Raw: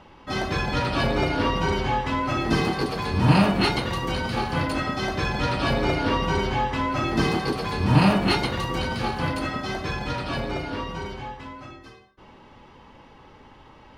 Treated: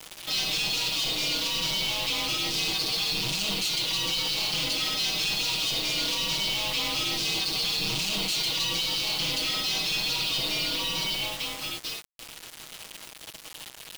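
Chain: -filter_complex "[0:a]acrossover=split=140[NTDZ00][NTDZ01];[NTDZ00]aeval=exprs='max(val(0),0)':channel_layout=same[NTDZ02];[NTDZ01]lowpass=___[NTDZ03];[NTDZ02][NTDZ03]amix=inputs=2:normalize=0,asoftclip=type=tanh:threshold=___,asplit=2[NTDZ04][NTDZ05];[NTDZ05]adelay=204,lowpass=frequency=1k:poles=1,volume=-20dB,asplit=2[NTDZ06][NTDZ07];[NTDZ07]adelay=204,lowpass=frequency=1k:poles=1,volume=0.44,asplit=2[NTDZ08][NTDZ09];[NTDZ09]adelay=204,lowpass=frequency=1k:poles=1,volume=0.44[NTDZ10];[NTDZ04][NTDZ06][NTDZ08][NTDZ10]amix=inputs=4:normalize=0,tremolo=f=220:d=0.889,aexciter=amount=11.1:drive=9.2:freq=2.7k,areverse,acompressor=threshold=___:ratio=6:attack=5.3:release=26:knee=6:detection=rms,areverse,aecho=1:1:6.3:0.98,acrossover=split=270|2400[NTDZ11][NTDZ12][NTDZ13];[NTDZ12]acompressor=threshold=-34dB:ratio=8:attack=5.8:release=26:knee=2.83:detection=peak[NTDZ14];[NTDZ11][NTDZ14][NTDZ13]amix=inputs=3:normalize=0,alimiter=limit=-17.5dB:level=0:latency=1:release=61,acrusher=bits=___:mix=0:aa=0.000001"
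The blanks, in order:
4.1k, -23.5dB, -28dB, 5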